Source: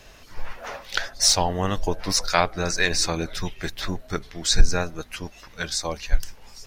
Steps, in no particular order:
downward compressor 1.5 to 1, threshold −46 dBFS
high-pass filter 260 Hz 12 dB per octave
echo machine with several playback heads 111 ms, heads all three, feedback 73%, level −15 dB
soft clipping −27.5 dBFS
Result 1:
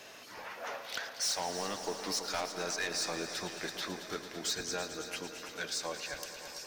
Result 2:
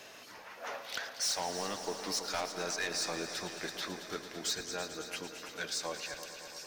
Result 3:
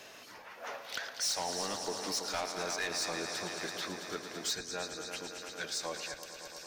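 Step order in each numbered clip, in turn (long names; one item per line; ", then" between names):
high-pass filter, then downward compressor, then soft clipping, then echo machine with several playback heads
downward compressor, then high-pass filter, then soft clipping, then echo machine with several playback heads
echo machine with several playback heads, then downward compressor, then high-pass filter, then soft clipping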